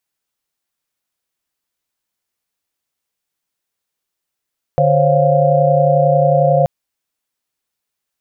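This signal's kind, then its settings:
held notes D3/C5/C#5/F5 sine, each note −15 dBFS 1.88 s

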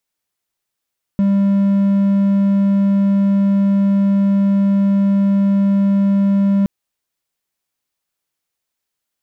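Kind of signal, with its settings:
tone triangle 198 Hz −9 dBFS 5.47 s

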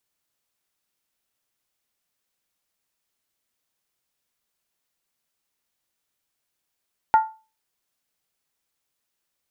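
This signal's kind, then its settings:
struck skin, lowest mode 880 Hz, decay 0.32 s, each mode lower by 12 dB, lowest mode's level −9 dB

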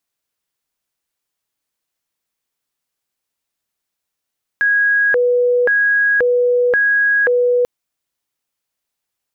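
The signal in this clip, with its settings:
siren hi-lo 490–1,650 Hz 0.94 per second sine −11 dBFS 3.04 s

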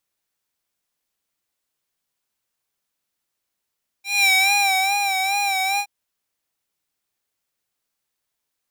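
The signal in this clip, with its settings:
subtractive patch with vibrato G5, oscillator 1 square, oscillator 2 saw, interval 0 semitones, oscillator 2 level −18 dB, sub −24 dB, noise −28.5 dB, filter highpass, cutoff 1,300 Hz, Q 1.6, filter envelope 1 octave, filter decay 0.67 s, filter sustain 0%, attack 201 ms, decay 0.75 s, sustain −6.5 dB, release 0.07 s, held 1.75 s, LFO 2.4 Hz, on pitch 66 cents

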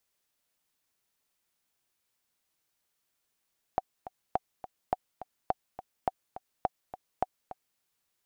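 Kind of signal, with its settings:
click track 209 BPM, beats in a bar 2, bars 7, 750 Hz, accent 14 dB −13 dBFS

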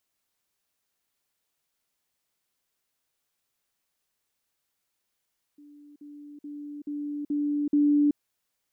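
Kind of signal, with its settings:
level staircase 292 Hz −48 dBFS, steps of 6 dB, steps 6, 0.38 s 0.05 s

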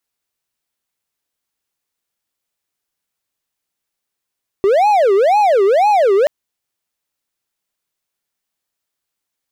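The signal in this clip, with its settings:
siren wail 385–847 Hz 2 per second triangle −7 dBFS 1.63 s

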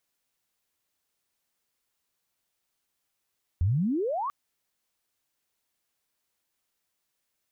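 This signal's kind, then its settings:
glide logarithmic 80 Hz → 1,200 Hz −20.5 dBFS → −28 dBFS 0.69 s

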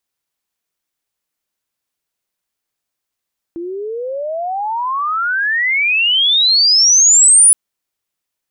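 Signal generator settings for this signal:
glide logarithmic 330 Hz → 10,000 Hz −22 dBFS → −4 dBFS 3.97 s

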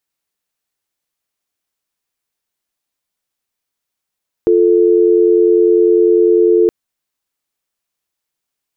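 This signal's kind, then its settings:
call progress tone dial tone, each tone −10 dBFS 2.22 s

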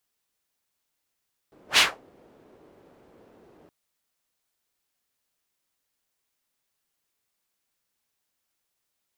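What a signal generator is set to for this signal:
pass-by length 2.17 s, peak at 0:00.26, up 0.11 s, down 0.24 s, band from 410 Hz, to 3,100 Hz, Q 1.4, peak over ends 39.5 dB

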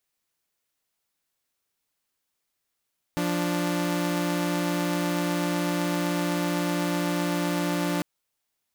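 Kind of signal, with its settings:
held notes F3/D4 saw, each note −24.5 dBFS 4.85 s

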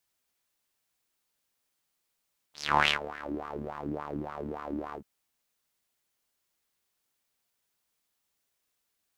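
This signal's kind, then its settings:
subtractive patch with filter wobble D2, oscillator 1 saw, interval +12 semitones, filter bandpass, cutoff 370 Hz, Q 4.2, filter envelope 3 octaves, filter decay 0.84 s, filter sustain 20%, attack 348 ms, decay 0.10 s, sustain −20 dB, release 0.09 s, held 2.40 s, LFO 3.5 Hz, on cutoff 1.1 octaves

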